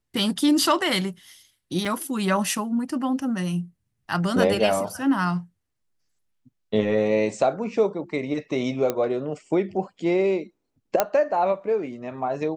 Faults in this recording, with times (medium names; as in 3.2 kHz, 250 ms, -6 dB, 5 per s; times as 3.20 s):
1.85 s: dropout 4.7 ms
8.90 s: pop -10 dBFS
11.00 s: pop -4 dBFS